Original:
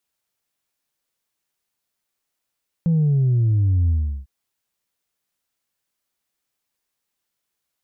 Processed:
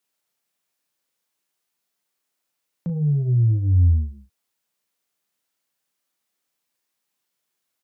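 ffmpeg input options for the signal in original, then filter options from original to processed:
-f lavfi -i "aevalsrc='0.178*clip((1.4-t)/0.37,0,1)*tanh(1.12*sin(2*PI*170*1.4/log(65/170)*(exp(log(65/170)*t/1.4)-1)))/tanh(1.12)':duration=1.4:sample_rate=44100"
-filter_complex "[0:a]asplit=2[link_01][link_02];[link_02]adelay=34,volume=-5.5dB[link_03];[link_01][link_03]amix=inputs=2:normalize=0,acrossover=split=120[link_04][link_05];[link_04]agate=range=-15dB:threshold=-30dB:ratio=16:detection=peak[link_06];[link_05]alimiter=limit=-22dB:level=0:latency=1:release=37[link_07];[link_06][link_07]amix=inputs=2:normalize=0"

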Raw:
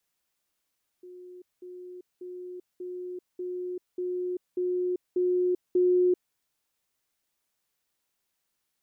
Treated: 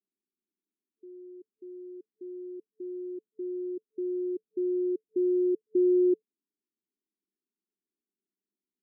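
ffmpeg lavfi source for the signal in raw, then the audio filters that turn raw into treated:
-f lavfi -i "aevalsrc='pow(10,(-43+3*floor(t/0.59))/20)*sin(2*PI*361*t)*clip(min(mod(t,0.59),0.39-mod(t,0.59))/0.005,0,1)':duration=5.31:sample_rate=44100"
-af "afftfilt=real='re*between(b*sr/4096,180,440)':imag='im*between(b*sr/4096,180,440)':win_size=4096:overlap=0.75"

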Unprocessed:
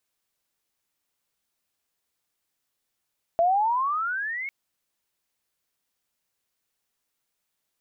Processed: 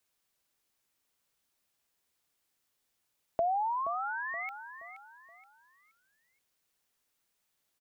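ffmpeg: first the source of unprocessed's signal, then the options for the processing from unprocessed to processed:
-f lavfi -i "aevalsrc='pow(10,(-17-12.5*t/1.1)/20)*sin(2*PI*661*1.1/(21*log(2)/12)*(exp(21*log(2)/12*t/1.1)-1))':duration=1.1:sample_rate=44100"
-filter_complex "[0:a]acrossover=split=220|840[link_01][link_02][link_03];[link_03]alimiter=level_in=11.5dB:limit=-24dB:level=0:latency=1:release=29,volume=-11.5dB[link_04];[link_01][link_02][link_04]amix=inputs=3:normalize=0,aecho=1:1:474|948|1422|1896:0.251|0.0879|0.0308|0.0108,acompressor=threshold=-32dB:ratio=2"

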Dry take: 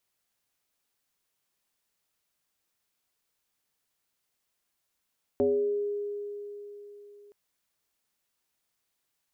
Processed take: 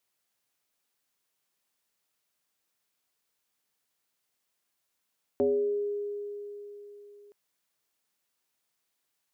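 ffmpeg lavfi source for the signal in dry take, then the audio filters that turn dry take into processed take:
-f lavfi -i "aevalsrc='0.0944*pow(10,-3*t/3.77)*sin(2*PI*410*t+1.1*pow(10,-3*t/0.85)*sin(2*PI*0.38*410*t))':duration=1.92:sample_rate=44100"
-af "lowshelf=frequency=75:gain=-12"

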